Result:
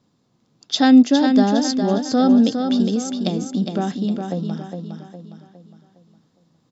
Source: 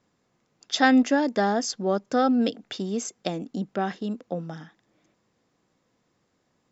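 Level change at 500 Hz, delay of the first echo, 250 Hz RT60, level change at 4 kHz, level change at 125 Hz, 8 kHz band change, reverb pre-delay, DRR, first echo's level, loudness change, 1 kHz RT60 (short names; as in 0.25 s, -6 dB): +3.0 dB, 0.41 s, none, +6.5 dB, +9.5 dB, n/a, none, none, -6.0 dB, +7.5 dB, none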